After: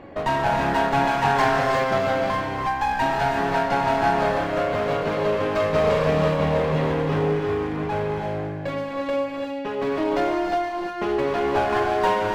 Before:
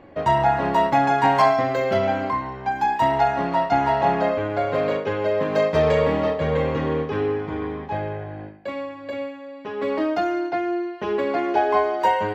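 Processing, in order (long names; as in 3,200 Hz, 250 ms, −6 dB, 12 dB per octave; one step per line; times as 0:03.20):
in parallel at +2 dB: downward compressor, threshold −31 dBFS, peak gain reduction 17 dB
on the sum: asymmetric clip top −26 dBFS
reverb whose tail is shaped and stops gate 370 ms rising, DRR 1 dB
level −2.5 dB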